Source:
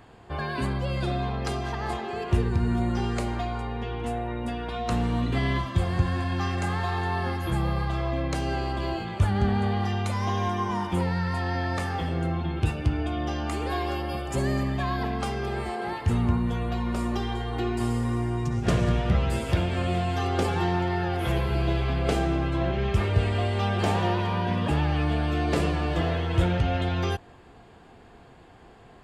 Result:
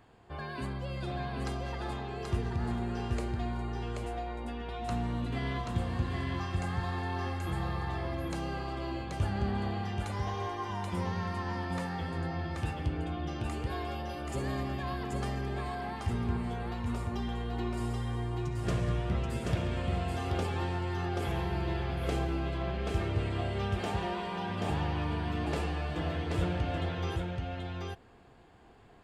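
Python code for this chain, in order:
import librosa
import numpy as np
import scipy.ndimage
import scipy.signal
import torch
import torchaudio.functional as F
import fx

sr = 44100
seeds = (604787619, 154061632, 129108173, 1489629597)

y = x + 10.0 ** (-3.0 / 20.0) * np.pad(x, (int(781 * sr / 1000.0), 0))[:len(x)]
y = y * 10.0 ** (-9.0 / 20.0)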